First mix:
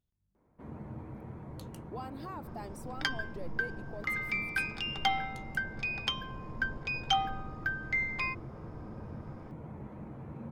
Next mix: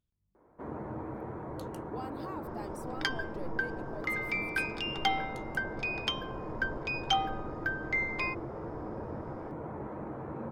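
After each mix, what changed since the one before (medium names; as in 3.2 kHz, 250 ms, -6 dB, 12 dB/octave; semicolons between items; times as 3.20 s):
first sound: add high-order bell 730 Hz +10 dB 2.9 oct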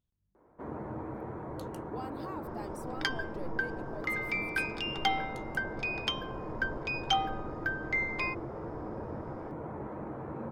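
no change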